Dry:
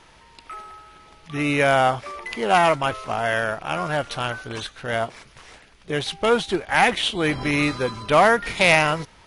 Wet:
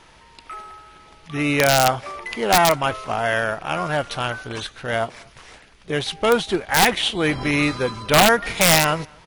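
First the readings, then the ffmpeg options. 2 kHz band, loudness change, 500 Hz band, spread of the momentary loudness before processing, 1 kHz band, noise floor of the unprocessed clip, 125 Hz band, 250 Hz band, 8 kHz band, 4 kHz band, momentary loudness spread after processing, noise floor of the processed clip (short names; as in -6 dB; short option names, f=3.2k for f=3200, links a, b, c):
+0.5 dB, +1.5 dB, +1.0 dB, 15 LU, +0.5 dB, -52 dBFS, +2.5 dB, +2.0 dB, +11.0 dB, +4.5 dB, 15 LU, -50 dBFS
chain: -filter_complex "[0:a]asplit=2[a][b];[b]adelay=239.1,volume=-29dB,highshelf=f=4k:g=-5.38[c];[a][c]amix=inputs=2:normalize=0,aeval=exprs='(mod(2.37*val(0)+1,2)-1)/2.37':c=same,volume=1.5dB"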